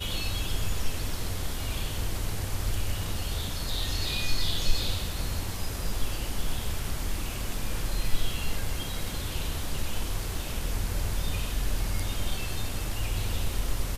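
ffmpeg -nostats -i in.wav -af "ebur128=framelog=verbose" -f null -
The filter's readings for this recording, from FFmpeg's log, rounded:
Integrated loudness:
  I:         -32.6 LUFS
  Threshold: -42.6 LUFS
Loudness range:
  LRA:         2.6 LU
  Threshold: -52.5 LUFS
  LRA low:   -33.6 LUFS
  LRA high:  -31.0 LUFS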